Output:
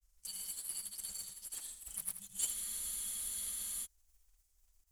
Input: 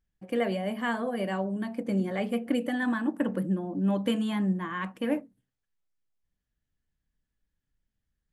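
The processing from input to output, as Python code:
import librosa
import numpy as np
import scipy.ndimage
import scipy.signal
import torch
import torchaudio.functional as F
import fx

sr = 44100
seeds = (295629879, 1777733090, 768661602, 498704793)

y = scipy.signal.sosfilt(scipy.signal.cheby2(4, 80, [280.0, 1300.0], 'bandstop', fs=sr, output='sos'), x)
y = fx.high_shelf(y, sr, hz=2300.0, db=10.5)
y = fx.mod_noise(y, sr, seeds[0], snr_db=15)
y = fx.stretch_grains(y, sr, factor=0.59, grain_ms=192.0)
y = fx.granulator(y, sr, seeds[1], grain_ms=100.0, per_s=20.0, spray_ms=100.0, spread_st=0)
y = fx.echo_thinned(y, sr, ms=80, feedback_pct=50, hz=420.0, wet_db=-10.0)
y = fx.spec_freeze(y, sr, seeds[2], at_s=2.56, hold_s=1.29)
y = F.gain(torch.from_numpy(y), 12.5).numpy()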